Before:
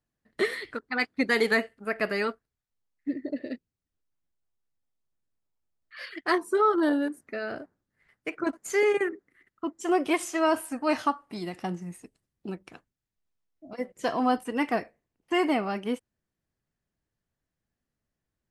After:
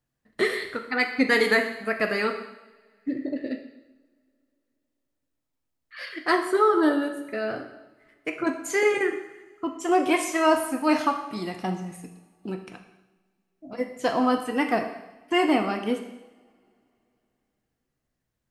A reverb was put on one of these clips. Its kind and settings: two-slope reverb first 0.92 s, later 3.2 s, from -26 dB, DRR 4.5 dB; trim +2.5 dB

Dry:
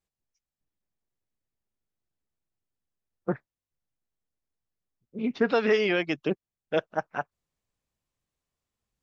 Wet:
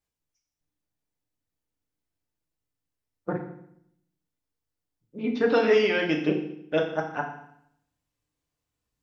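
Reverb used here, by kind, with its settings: FDN reverb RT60 0.71 s, low-frequency decay 1.3×, high-frequency decay 1×, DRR 0.5 dB; trim -1 dB

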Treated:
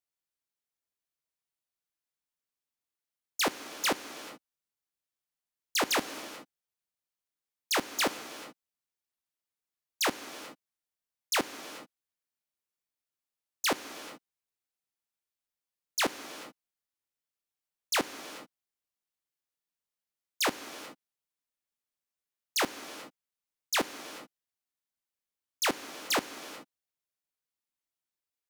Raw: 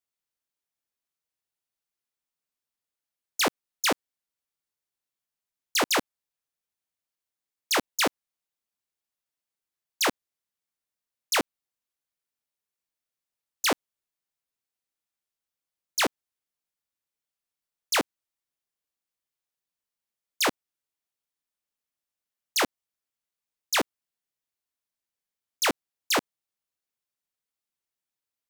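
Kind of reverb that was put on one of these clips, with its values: gated-style reverb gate 460 ms flat, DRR 11 dB; trim -4 dB

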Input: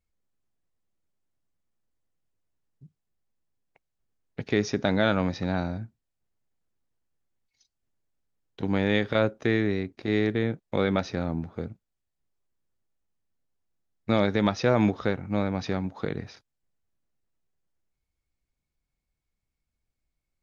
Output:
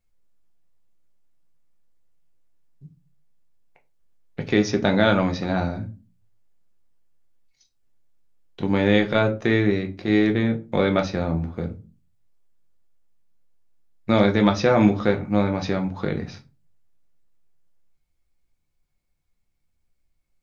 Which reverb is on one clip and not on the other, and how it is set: simulated room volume 120 m³, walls furnished, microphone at 0.87 m; trim +3.5 dB

